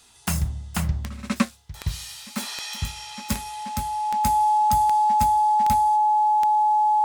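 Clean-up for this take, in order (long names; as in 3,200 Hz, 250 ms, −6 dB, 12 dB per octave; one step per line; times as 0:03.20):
click removal
notch filter 850 Hz, Q 30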